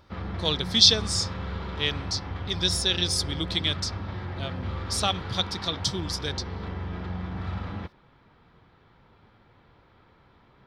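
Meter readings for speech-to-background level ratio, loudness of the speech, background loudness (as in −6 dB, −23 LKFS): 10.0 dB, −25.0 LKFS, −35.0 LKFS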